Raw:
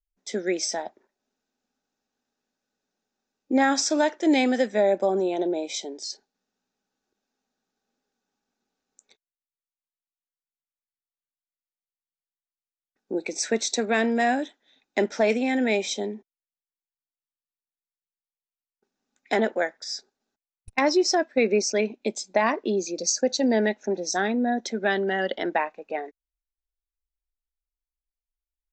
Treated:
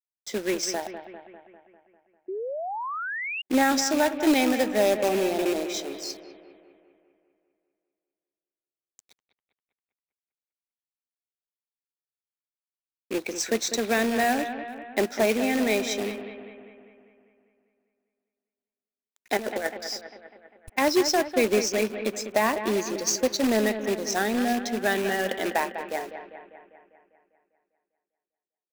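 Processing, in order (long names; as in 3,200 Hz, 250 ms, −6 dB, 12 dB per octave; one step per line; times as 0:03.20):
loose part that buzzes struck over −34 dBFS, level −26 dBFS
0:19.37–0:19.80: compressor whose output falls as the input rises −27 dBFS, ratio −0.5
log-companded quantiser 4 bits
bucket-brigade delay 199 ms, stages 4,096, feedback 58%, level −10 dB
0:02.28–0:03.42: sound drawn into the spectrogram rise 360–2,900 Hz −30 dBFS
level −1.5 dB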